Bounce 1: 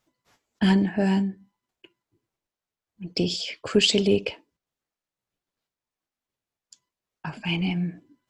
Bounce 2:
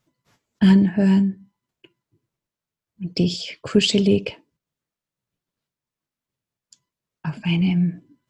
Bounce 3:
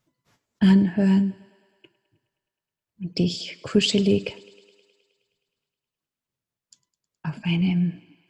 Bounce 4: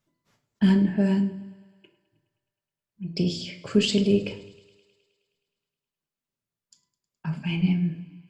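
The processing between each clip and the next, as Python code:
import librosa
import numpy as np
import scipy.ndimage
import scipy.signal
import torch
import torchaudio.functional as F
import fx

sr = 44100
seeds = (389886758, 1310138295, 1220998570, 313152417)

y1 = fx.peak_eq(x, sr, hz=140.0, db=9.5, octaves=1.4)
y1 = fx.notch(y1, sr, hz=770.0, q=12.0)
y2 = fx.echo_thinned(y1, sr, ms=105, feedback_pct=72, hz=210.0, wet_db=-21.5)
y2 = y2 * 10.0 ** (-2.5 / 20.0)
y3 = fx.room_shoebox(y2, sr, seeds[0], volume_m3=630.0, walls='furnished', distance_m=1.2)
y3 = y3 * 10.0 ** (-4.0 / 20.0)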